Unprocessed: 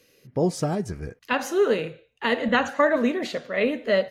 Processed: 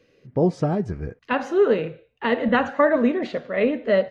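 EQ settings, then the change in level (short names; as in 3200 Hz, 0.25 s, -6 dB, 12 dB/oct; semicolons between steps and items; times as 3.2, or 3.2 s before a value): tape spacing loss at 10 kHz 26 dB; +4.0 dB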